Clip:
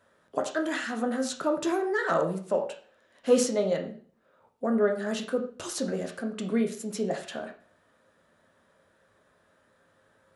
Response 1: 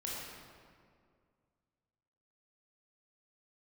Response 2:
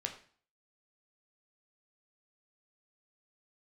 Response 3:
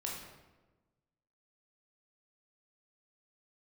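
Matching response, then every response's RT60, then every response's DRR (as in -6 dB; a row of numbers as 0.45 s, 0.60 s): 2; 2.1 s, 0.45 s, 1.2 s; -5.5 dB, 3.0 dB, -3.0 dB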